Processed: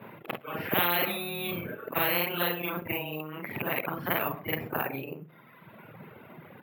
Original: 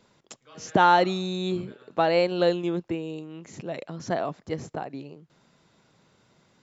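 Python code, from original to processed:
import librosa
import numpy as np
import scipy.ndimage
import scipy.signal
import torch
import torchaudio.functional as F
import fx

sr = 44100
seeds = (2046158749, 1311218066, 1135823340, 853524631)

p1 = fx.frame_reverse(x, sr, frame_ms=103.0)
p2 = scipy.signal.sosfilt(scipy.signal.ellip(3, 1.0, 40, [110.0, 2500.0], 'bandpass', fs=sr, output='sos'), p1)
p3 = fx.dereverb_blind(p2, sr, rt60_s=1.3)
p4 = p3 + fx.echo_feedback(p3, sr, ms=64, feedback_pct=35, wet_db=-22, dry=0)
p5 = np.repeat(p4[::3], 3)[:len(p4)]
y = fx.spectral_comp(p5, sr, ratio=4.0)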